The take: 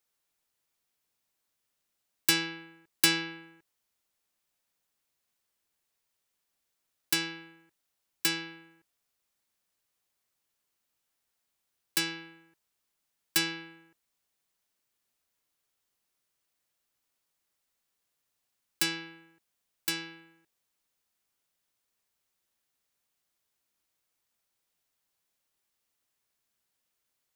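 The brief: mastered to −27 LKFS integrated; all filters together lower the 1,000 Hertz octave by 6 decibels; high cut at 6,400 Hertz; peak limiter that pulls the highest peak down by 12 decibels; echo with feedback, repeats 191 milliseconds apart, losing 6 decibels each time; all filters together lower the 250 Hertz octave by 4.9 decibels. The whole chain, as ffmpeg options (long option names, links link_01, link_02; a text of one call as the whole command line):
ffmpeg -i in.wav -af "lowpass=6400,equalizer=frequency=250:width_type=o:gain=-7.5,equalizer=frequency=1000:width_type=o:gain=-7.5,alimiter=level_in=0.5dB:limit=-24dB:level=0:latency=1,volume=-0.5dB,aecho=1:1:191|382|573|764|955|1146:0.501|0.251|0.125|0.0626|0.0313|0.0157,volume=11dB" out.wav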